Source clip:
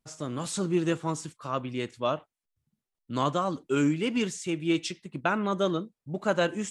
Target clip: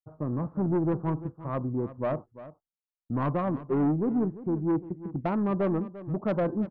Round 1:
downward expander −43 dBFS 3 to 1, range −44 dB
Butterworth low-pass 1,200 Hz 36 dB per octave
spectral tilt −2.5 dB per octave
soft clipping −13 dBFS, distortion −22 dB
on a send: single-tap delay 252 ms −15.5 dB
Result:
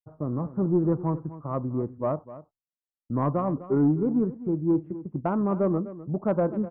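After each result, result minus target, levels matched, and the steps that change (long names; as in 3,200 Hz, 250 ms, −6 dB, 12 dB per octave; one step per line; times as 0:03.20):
soft clipping: distortion −10 dB; echo 93 ms early
change: soft clipping −21 dBFS, distortion −12 dB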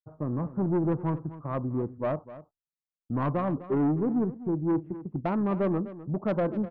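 echo 93 ms early
change: single-tap delay 345 ms −15.5 dB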